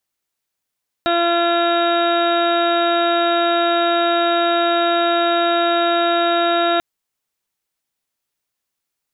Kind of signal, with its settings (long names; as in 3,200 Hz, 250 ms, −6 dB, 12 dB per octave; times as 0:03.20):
steady harmonic partials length 5.74 s, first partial 342 Hz, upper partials 4/−11/0/−6.5/−17/−13/−13/−13.5/−18/−4 dB, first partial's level −21 dB